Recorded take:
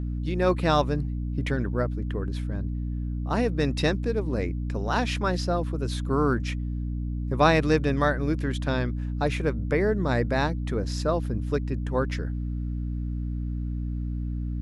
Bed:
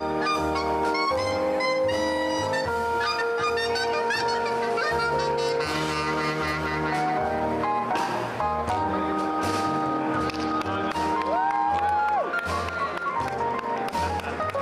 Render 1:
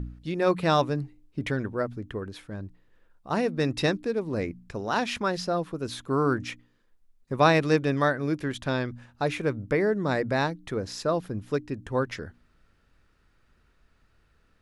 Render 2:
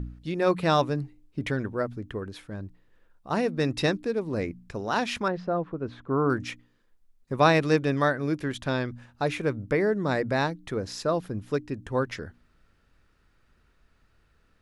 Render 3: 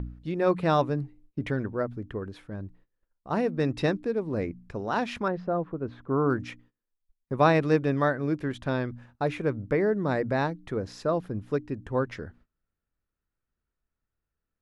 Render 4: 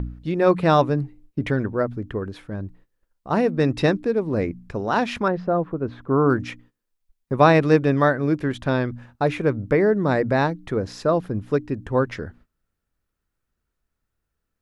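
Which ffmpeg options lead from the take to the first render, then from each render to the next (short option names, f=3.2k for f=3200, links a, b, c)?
-af "bandreject=f=60:t=h:w=4,bandreject=f=120:t=h:w=4,bandreject=f=180:t=h:w=4,bandreject=f=240:t=h:w=4,bandreject=f=300:t=h:w=4"
-filter_complex "[0:a]asettb=1/sr,asplit=3[a][b][c];[a]atrim=end=5.284[d];[b]atrim=start=5.28:end=6.3,asetpts=PTS-STARTPTS,afade=t=in:d=0.004:c=qsin,afade=t=out:st=1.016:d=0.004:c=qsin,lowpass=1.6k[e];[c]atrim=start=6.296[f];[d][e]acrossfade=d=0.004:c1=hsin:c2=qsin[g];[g][f]acrossfade=d=0.004:c1=qsin:c2=hsin"
-af "agate=range=-21dB:threshold=-54dB:ratio=16:detection=peak,highshelf=f=2.8k:g=-11"
-af "volume=6.5dB,alimiter=limit=-3dB:level=0:latency=1"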